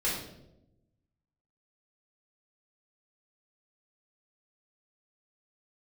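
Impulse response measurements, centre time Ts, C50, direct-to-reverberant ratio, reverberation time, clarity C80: 51 ms, 2.5 dB, -7.0 dB, 0.85 s, 6.5 dB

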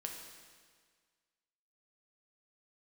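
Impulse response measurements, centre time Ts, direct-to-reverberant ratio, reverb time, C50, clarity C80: 55 ms, 1.0 dB, 1.7 s, 3.5 dB, 5.5 dB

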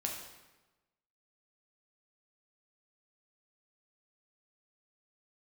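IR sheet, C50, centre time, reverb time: 4.0 dB, 43 ms, 1.1 s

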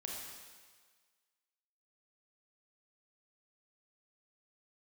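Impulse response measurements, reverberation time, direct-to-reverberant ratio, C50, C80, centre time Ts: 1.6 s, -2.0 dB, 0.0 dB, 2.5 dB, 87 ms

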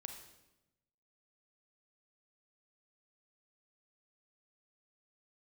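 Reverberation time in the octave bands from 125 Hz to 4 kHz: 1.3 s, 1.2 s, 1.0 s, 0.90 s, 0.85 s, 0.80 s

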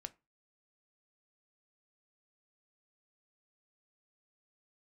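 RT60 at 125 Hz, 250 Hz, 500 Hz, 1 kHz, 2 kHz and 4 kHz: 0.35 s, 0.30 s, 0.25 s, 0.25 s, 0.25 s, 0.20 s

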